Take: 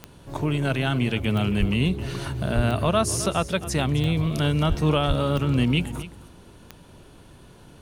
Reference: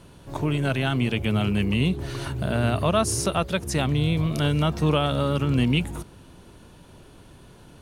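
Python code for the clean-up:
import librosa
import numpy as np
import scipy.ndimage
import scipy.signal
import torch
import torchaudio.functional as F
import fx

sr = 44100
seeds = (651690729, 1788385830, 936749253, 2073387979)

y = fx.fix_declick_ar(x, sr, threshold=10.0)
y = fx.fix_deplosive(y, sr, at_s=(1.59, 2.55, 4.68, 5.07))
y = fx.fix_echo_inverse(y, sr, delay_ms=264, level_db=-15.5)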